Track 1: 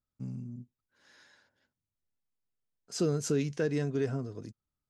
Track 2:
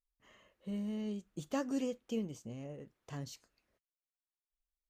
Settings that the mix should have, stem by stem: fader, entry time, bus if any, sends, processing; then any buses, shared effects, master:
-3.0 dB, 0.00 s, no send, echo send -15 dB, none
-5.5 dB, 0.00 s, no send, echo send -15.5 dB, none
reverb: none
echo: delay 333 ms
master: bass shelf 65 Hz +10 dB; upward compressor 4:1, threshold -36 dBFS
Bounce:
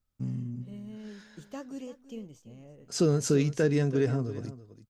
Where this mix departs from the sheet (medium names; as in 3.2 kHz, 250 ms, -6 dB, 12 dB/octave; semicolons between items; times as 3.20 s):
stem 1 -3.0 dB -> +4.0 dB; master: missing upward compressor 4:1, threshold -36 dBFS